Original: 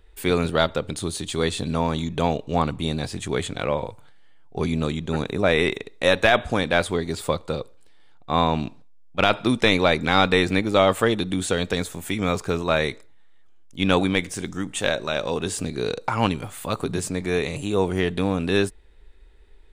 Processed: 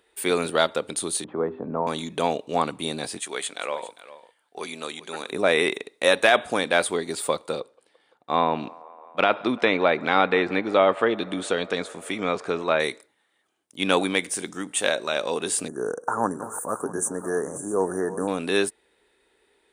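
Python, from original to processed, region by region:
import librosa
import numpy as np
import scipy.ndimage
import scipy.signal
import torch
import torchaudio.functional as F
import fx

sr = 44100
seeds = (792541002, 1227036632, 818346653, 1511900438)

y = fx.chain(x, sr, fx.lowpass(hz=1200.0, slope=24),
    fx.hum_notches(base_hz=50, count=8),
    fx.band_squash(depth_pct=40), at=(1.24, 1.87))
y = fx.chain(y, sr, fx.highpass(hz=900.0, slope=6),
    fx.echo_single(ms=401, db=-16.0), at=(3.18, 5.31))
y = fx.chain(y, sr, fx.env_lowpass_down(base_hz=2700.0, full_db=-15.0),
    fx.high_shelf(hz=6600.0, db=-11.0),
    fx.echo_wet_bandpass(ms=171, feedback_pct=82, hz=880.0, wet_db=-22), at=(7.6, 12.8))
y = fx.chain(y, sr, fx.reverse_delay_fb(ms=327, feedback_pct=53, wet_db=-13.0),
    fx.cheby1_bandstop(low_hz=1700.0, high_hz=5900.0, order=5), at=(15.68, 18.28))
y = scipy.signal.sosfilt(scipy.signal.butter(2, 290.0, 'highpass', fs=sr, output='sos'), y)
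y = fx.peak_eq(y, sr, hz=9200.0, db=11.0, octaves=0.25)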